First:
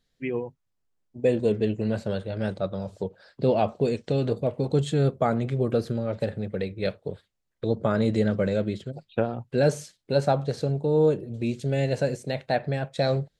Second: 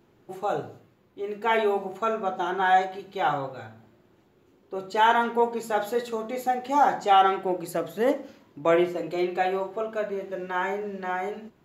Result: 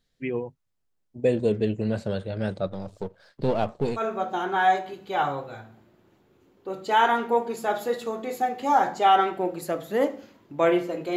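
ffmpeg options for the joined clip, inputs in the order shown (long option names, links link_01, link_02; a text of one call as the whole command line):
ffmpeg -i cue0.wav -i cue1.wav -filter_complex "[0:a]asettb=1/sr,asplit=3[link_01][link_02][link_03];[link_01]atrim=end=2.674[link_04];[link_02]atrim=start=2.67:end=4.05,asetpts=PTS-STARTPTS,afade=type=in:duration=0.004:curve=qsin,afade=type=out:start_time=1.376:duration=0.004:curve=qsin,aeval=exprs='if(lt(val(0),0),0.447*val(0),val(0))':channel_layout=same[link_05];[link_03]atrim=start=4.046[link_06];[link_04][link_05]acrossfade=duration=0.004:curve1=hsin:curve2=qsin[link_07];[link_07][link_06]acrossfade=duration=0.004:curve1=qsin:curve2=hsin,apad=whole_dur=11.16,atrim=end=11.16,atrim=end=4.05,asetpts=PTS-STARTPTS[link_08];[1:a]atrim=start=1.97:end=9.22,asetpts=PTS-STARTPTS[link_09];[link_08][link_09]acrossfade=duration=0.14:curve1=tri:curve2=tri" out.wav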